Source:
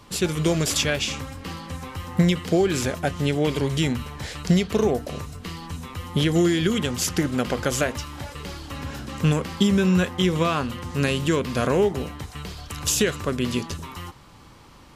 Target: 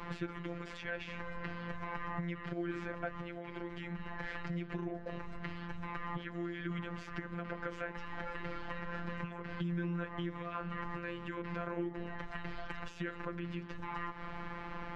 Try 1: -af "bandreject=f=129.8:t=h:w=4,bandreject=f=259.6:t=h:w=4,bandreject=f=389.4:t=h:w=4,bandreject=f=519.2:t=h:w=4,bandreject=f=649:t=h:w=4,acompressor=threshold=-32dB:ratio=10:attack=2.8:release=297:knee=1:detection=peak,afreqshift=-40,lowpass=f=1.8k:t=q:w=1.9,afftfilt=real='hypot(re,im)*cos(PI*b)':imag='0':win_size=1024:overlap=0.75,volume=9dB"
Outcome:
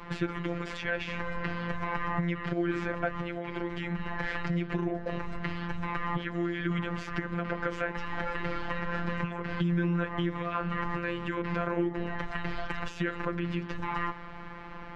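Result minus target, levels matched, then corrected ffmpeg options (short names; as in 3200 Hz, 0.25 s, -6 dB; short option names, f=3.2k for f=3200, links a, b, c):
compressor: peak gain reduction -8.5 dB
-af "bandreject=f=129.8:t=h:w=4,bandreject=f=259.6:t=h:w=4,bandreject=f=389.4:t=h:w=4,bandreject=f=519.2:t=h:w=4,bandreject=f=649:t=h:w=4,acompressor=threshold=-41.5dB:ratio=10:attack=2.8:release=297:knee=1:detection=peak,afreqshift=-40,lowpass=f=1.8k:t=q:w=1.9,afftfilt=real='hypot(re,im)*cos(PI*b)':imag='0':win_size=1024:overlap=0.75,volume=9dB"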